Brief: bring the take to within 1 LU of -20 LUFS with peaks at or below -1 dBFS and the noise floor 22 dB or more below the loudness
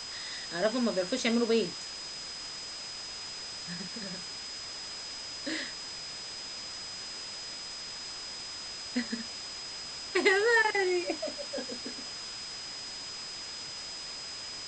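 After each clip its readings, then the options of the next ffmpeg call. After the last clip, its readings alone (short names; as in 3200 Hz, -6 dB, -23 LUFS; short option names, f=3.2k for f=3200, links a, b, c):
steady tone 5000 Hz; tone level -40 dBFS; noise floor -41 dBFS; noise floor target -55 dBFS; loudness -33.0 LUFS; peak -12.0 dBFS; loudness target -20.0 LUFS
-> -af "bandreject=f=5k:w=30"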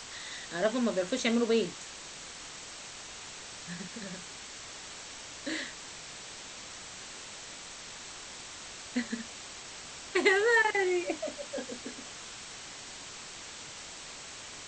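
steady tone none; noise floor -46 dBFS; noise floor target -57 dBFS
-> -af "afftdn=nr=11:nf=-46"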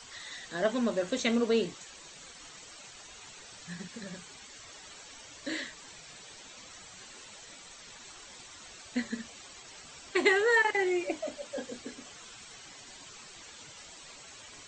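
noise floor -50 dBFS; noise floor target -53 dBFS
-> -af "afftdn=nr=6:nf=-50"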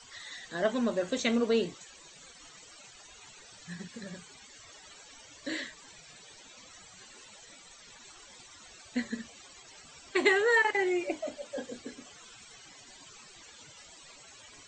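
noise floor -54 dBFS; loudness -31.0 LUFS; peak -12.5 dBFS; loudness target -20.0 LUFS
-> -af "volume=11dB"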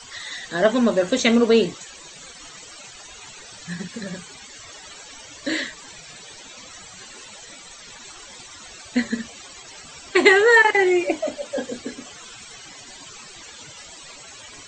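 loudness -20.0 LUFS; peak -1.5 dBFS; noise floor -43 dBFS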